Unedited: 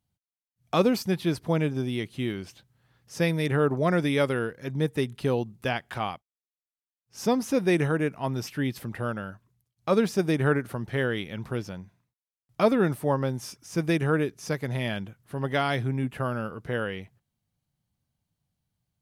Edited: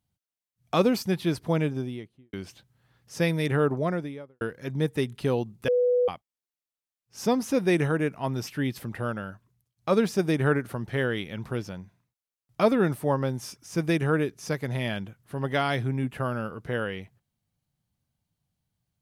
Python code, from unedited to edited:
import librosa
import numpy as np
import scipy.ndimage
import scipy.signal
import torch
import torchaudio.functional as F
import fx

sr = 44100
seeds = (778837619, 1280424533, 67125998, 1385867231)

y = fx.studio_fade_out(x, sr, start_s=1.58, length_s=0.75)
y = fx.studio_fade_out(y, sr, start_s=3.57, length_s=0.84)
y = fx.edit(y, sr, fx.bleep(start_s=5.68, length_s=0.4, hz=493.0, db=-19.0), tone=tone)